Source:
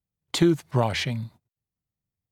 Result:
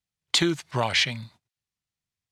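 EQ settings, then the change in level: distance through air 60 m; tilt shelf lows -8.5 dB, about 1.1 kHz; +2.0 dB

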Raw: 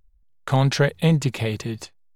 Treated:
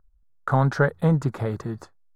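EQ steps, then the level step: resonant high shelf 1.9 kHz -11 dB, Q 3; -2.0 dB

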